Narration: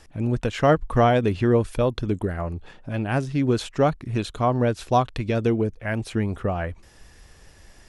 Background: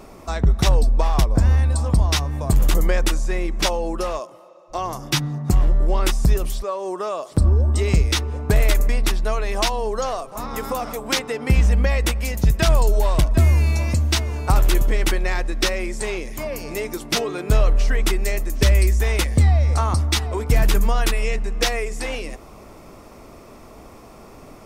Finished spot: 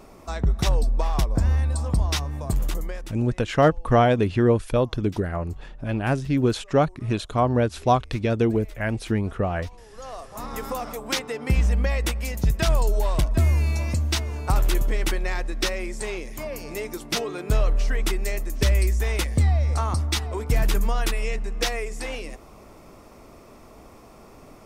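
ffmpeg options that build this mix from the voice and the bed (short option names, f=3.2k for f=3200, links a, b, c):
-filter_complex "[0:a]adelay=2950,volume=0.5dB[a];[1:a]volume=17dB,afade=t=out:st=2.34:d=0.84:silence=0.0841395,afade=t=in:st=9.91:d=0.52:silence=0.0794328[b];[a][b]amix=inputs=2:normalize=0"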